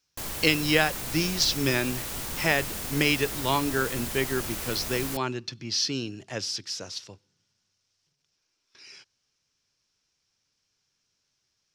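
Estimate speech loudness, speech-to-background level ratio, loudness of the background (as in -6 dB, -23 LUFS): -27.0 LUFS, 5.5 dB, -32.5 LUFS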